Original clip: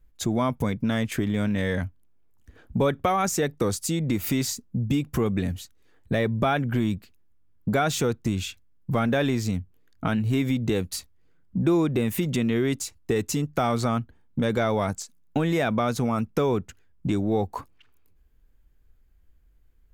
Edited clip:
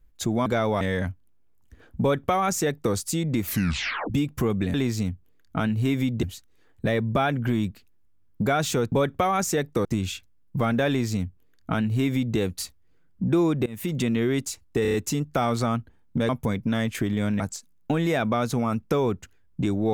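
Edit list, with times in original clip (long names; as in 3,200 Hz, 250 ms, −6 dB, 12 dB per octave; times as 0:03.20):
0:00.46–0:01.57: swap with 0:14.51–0:14.86
0:02.77–0:03.70: duplicate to 0:08.19
0:04.20: tape stop 0.67 s
0:09.22–0:10.71: duplicate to 0:05.50
0:12.00–0:12.30: fade in, from −22 dB
0:13.16: stutter 0.03 s, 5 plays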